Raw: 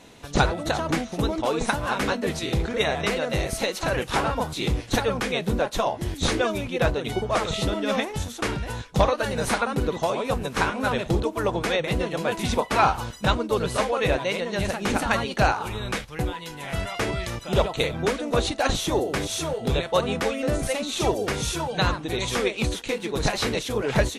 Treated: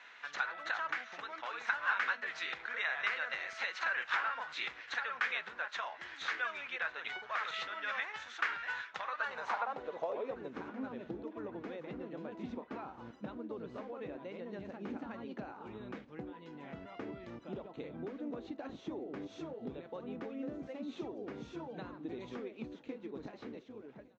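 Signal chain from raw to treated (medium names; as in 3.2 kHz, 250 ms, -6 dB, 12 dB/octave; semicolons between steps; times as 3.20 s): fade out at the end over 1.91 s; steep low-pass 7.3 kHz 48 dB/octave; treble shelf 3.5 kHz -11.5 dB; in parallel at -2 dB: peak limiter -16.5 dBFS, peak gain reduction 7 dB; on the sum: compression, threshold -24 dBFS, peak gain reduction 12 dB; tilt shelf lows -9.5 dB, about 910 Hz; band-pass sweep 1.6 kHz -> 270 Hz, 9.01–10.63 s; on a send: feedback delay 1159 ms, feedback 60%, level -23 dB; on the sum: trim -2 dB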